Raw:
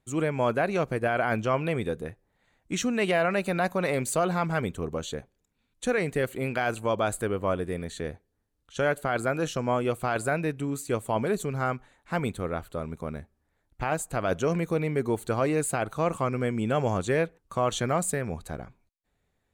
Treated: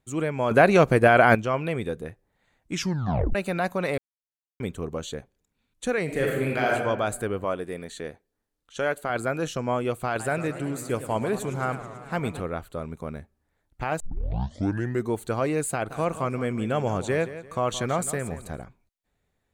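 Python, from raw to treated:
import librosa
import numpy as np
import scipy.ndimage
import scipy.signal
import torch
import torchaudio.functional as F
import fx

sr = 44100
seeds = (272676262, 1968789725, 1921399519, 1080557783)

y = fx.reverb_throw(x, sr, start_s=6.04, length_s=0.68, rt60_s=1.2, drr_db=-2.0)
y = fx.peak_eq(y, sr, hz=70.0, db=-11.0, octaves=2.4, at=(7.44, 9.1))
y = fx.echo_warbled(y, sr, ms=108, feedback_pct=76, rate_hz=2.8, cents=214, wet_db=-13, at=(10.08, 12.42))
y = fx.echo_feedback(y, sr, ms=171, feedback_pct=32, wet_db=-13.5, at=(15.89, 18.62), fade=0.02)
y = fx.edit(y, sr, fx.clip_gain(start_s=0.51, length_s=0.84, db=9.5),
    fx.tape_stop(start_s=2.73, length_s=0.62),
    fx.silence(start_s=3.98, length_s=0.62),
    fx.tape_start(start_s=14.0, length_s=1.09), tone=tone)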